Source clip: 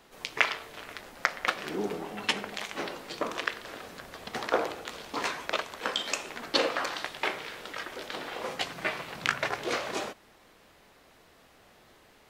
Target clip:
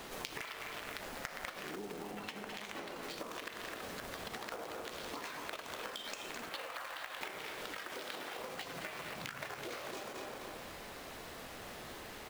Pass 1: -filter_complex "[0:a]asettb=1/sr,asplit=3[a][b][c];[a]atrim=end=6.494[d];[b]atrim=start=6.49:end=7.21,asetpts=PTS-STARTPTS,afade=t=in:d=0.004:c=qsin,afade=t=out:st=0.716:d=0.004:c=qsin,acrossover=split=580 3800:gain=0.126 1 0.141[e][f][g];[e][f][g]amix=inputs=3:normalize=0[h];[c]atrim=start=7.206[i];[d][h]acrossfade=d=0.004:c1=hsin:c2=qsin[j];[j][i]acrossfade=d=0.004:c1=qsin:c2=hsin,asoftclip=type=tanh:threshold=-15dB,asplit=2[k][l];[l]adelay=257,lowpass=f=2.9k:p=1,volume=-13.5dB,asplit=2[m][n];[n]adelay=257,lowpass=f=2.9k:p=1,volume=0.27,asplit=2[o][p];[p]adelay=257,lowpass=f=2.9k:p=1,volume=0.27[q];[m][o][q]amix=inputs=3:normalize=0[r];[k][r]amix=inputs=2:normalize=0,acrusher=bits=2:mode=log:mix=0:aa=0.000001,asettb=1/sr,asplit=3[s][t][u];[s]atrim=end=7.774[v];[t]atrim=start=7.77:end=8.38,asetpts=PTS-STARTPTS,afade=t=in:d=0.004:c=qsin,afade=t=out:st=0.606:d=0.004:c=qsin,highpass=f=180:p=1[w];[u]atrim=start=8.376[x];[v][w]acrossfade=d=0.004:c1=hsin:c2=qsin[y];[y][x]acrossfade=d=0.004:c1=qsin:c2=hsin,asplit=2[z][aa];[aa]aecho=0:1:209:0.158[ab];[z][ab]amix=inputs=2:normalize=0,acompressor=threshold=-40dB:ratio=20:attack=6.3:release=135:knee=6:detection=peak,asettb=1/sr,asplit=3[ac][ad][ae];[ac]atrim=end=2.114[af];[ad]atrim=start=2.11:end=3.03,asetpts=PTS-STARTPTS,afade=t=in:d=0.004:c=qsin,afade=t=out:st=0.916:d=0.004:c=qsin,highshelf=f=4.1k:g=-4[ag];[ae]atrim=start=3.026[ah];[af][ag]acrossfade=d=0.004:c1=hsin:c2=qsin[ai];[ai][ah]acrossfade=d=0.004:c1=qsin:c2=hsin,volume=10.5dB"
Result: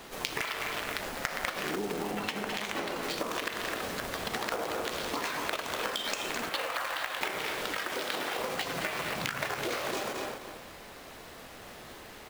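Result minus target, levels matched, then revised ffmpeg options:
compressor: peak gain reduction -10.5 dB
-filter_complex "[0:a]asettb=1/sr,asplit=3[a][b][c];[a]atrim=end=6.494[d];[b]atrim=start=6.49:end=7.21,asetpts=PTS-STARTPTS,afade=t=in:d=0.004:c=qsin,afade=t=out:st=0.716:d=0.004:c=qsin,acrossover=split=580 3800:gain=0.126 1 0.141[e][f][g];[e][f][g]amix=inputs=3:normalize=0[h];[c]atrim=start=7.206[i];[d][h]acrossfade=d=0.004:c1=hsin:c2=qsin[j];[j][i]acrossfade=d=0.004:c1=qsin:c2=hsin,asoftclip=type=tanh:threshold=-15dB,asplit=2[k][l];[l]adelay=257,lowpass=f=2.9k:p=1,volume=-13.5dB,asplit=2[m][n];[n]adelay=257,lowpass=f=2.9k:p=1,volume=0.27,asplit=2[o][p];[p]adelay=257,lowpass=f=2.9k:p=1,volume=0.27[q];[m][o][q]amix=inputs=3:normalize=0[r];[k][r]amix=inputs=2:normalize=0,acrusher=bits=2:mode=log:mix=0:aa=0.000001,asettb=1/sr,asplit=3[s][t][u];[s]atrim=end=7.774[v];[t]atrim=start=7.77:end=8.38,asetpts=PTS-STARTPTS,afade=t=in:d=0.004:c=qsin,afade=t=out:st=0.606:d=0.004:c=qsin,highpass=f=180:p=1[w];[u]atrim=start=8.376[x];[v][w]acrossfade=d=0.004:c1=hsin:c2=qsin[y];[y][x]acrossfade=d=0.004:c1=qsin:c2=hsin,asplit=2[z][aa];[aa]aecho=0:1:209:0.158[ab];[z][ab]amix=inputs=2:normalize=0,acompressor=threshold=-51dB:ratio=20:attack=6.3:release=135:knee=6:detection=peak,asettb=1/sr,asplit=3[ac][ad][ae];[ac]atrim=end=2.114[af];[ad]atrim=start=2.11:end=3.03,asetpts=PTS-STARTPTS,afade=t=in:d=0.004:c=qsin,afade=t=out:st=0.916:d=0.004:c=qsin,highshelf=f=4.1k:g=-4[ag];[ae]atrim=start=3.026[ah];[af][ag]acrossfade=d=0.004:c1=hsin:c2=qsin[ai];[ai][ah]acrossfade=d=0.004:c1=qsin:c2=hsin,volume=10.5dB"

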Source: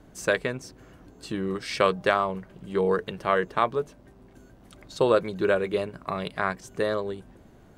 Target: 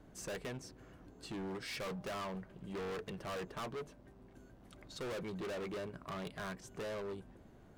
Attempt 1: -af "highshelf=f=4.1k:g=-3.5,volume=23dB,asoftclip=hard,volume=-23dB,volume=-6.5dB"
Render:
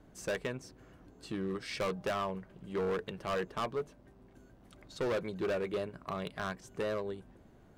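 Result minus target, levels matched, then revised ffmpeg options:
overloaded stage: distortion -5 dB
-af "highshelf=f=4.1k:g=-3.5,volume=33dB,asoftclip=hard,volume=-33dB,volume=-6.5dB"

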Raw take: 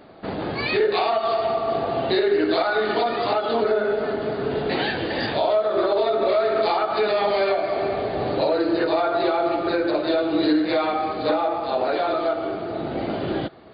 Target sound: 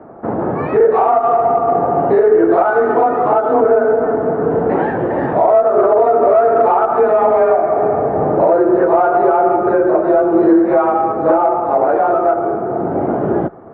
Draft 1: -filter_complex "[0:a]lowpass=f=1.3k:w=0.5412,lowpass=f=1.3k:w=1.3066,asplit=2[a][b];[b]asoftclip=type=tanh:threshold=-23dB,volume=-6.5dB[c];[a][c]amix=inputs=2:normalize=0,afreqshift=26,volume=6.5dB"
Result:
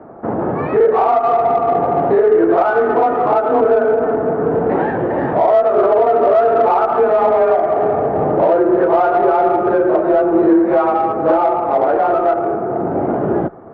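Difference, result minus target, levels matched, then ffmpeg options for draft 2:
soft clip: distortion +11 dB
-filter_complex "[0:a]lowpass=f=1.3k:w=0.5412,lowpass=f=1.3k:w=1.3066,asplit=2[a][b];[b]asoftclip=type=tanh:threshold=-14dB,volume=-6.5dB[c];[a][c]amix=inputs=2:normalize=0,afreqshift=26,volume=6.5dB"

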